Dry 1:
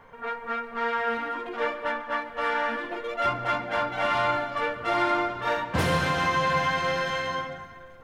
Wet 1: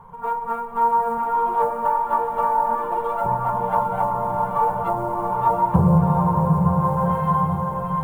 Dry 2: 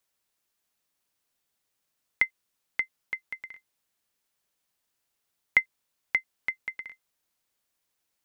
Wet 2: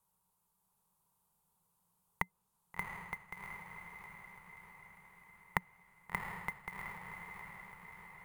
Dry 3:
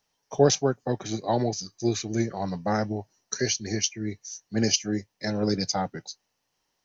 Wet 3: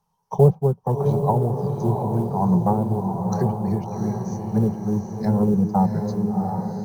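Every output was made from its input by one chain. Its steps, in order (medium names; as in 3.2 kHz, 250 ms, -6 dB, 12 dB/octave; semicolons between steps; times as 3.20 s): low-pass that closes with the level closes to 520 Hz, closed at -21 dBFS; dynamic bell 600 Hz, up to +4 dB, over -40 dBFS, Q 1; in parallel at -7 dB: short-mantissa float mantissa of 2-bit; on the sum: FFT filter 120 Hz 0 dB, 180 Hz +9 dB, 280 Hz -19 dB, 410 Hz -5 dB, 640 Hz -11 dB, 930 Hz +5 dB, 1.8 kHz -20 dB, 3.4 kHz -17 dB, 5.6 kHz -17 dB, 9.4 kHz -5 dB; echo that smears into a reverb 717 ms, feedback 55%, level -4.5 dB; trim +4.5 dB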